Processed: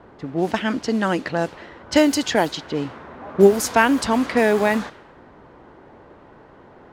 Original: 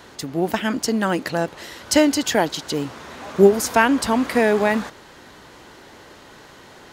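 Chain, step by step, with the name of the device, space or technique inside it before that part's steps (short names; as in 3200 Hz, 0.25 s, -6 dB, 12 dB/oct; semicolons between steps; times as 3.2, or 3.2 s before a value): cassette deck with a dynamic noise filter (white noise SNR 24 dB; low-pass opened by the level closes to 910 Hz, open at -14 dBFS)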